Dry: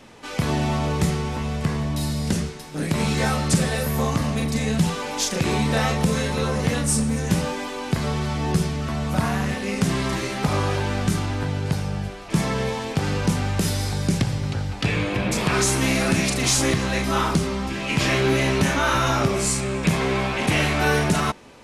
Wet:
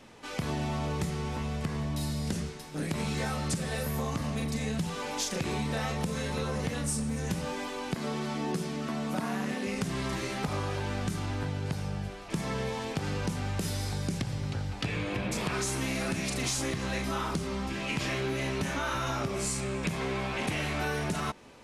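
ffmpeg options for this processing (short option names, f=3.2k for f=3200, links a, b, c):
-filter_complex "[0:a]asettb=1/sr,asplit=3[a][b][c];[a]atrim=end=7.944[d];[b]atrim=start=7.94:end=9.67,asetpts=PTS-STARTPTS,afade=t=in:d=0.004:c=qsin,afade=t=out:st=1.726:d=0.004:c=qsin,highpass=f=240:t=q:w=1.6[e];[c]atrim=start=9.666[f];[d][e]acrossfade=d=0.004:c1=hsin:c2=qsin[g];[g][f]acrossfade=d=0.004:c1=qsin:c2=hsin,acompressor=threshold=-22dB:ratio=6,volume=-6dB"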